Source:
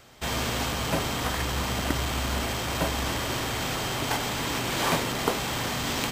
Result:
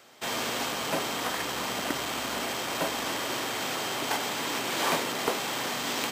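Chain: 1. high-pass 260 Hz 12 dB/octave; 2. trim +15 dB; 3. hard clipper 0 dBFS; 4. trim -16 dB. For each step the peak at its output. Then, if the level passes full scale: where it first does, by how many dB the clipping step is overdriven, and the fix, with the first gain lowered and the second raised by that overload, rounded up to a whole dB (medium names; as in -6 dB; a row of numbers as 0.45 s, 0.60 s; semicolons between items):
-7.5 dBFS, +7.5 dBFS, 0.0 dBFS, -16.0 dBFS; step 2, 7.5 dB; step 2 +7 dB, step 4 -8 dB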